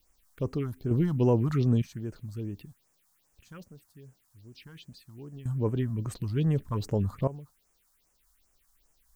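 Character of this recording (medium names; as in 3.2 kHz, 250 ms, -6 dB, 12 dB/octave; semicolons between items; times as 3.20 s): random-step tremolo 1.1 Hz, depth 95%; a quantiser's noise floor 12-bit, dither triangular; phasing stages 4, 2.5 Hz, lowest notch 390–4000 Hz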